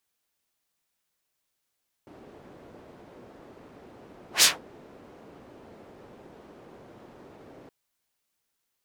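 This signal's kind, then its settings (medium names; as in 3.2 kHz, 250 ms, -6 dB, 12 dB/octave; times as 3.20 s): whoosh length 5.62 s, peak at 2.36 s, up 0.12 s, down 0.18 s, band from 400 Hz, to 6.1 kHz, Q 1, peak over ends 34 dB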